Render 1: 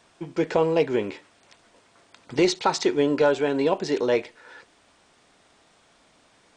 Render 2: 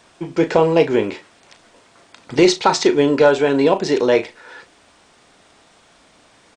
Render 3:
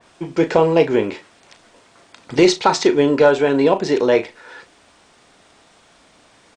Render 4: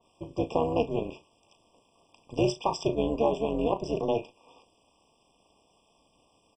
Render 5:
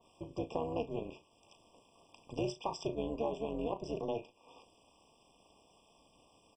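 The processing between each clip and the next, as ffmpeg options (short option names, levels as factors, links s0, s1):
-filter_complex "[0:a]asplit=2[s0][s1];[s1]adelay=36,volume=0.282[s2];[s0][s2]amix=inputs=2:normalize=0,volume=2.24"
-af "adynamicequalizer=threshold=0.0316:dfrequency=2800:dqfactor=0.7:tfrequency=2800:tqfactor=0.7:attack=5:release=100:ratio=0.375:range=1.5:mode=cutabove:tftype=highshelf"
-af "tremolo=f=230:d=0.919,afftfilt=real='re*eq(mod(floor(b*sr/1024/1200),2),0)':imag='im*eq(mod(floor(b*sr/1024/1200),2),0)':win_size=1024:overlap=0.75,volume=0.376"
-af "acompressor=threshold=0.00316:ratio=1.5"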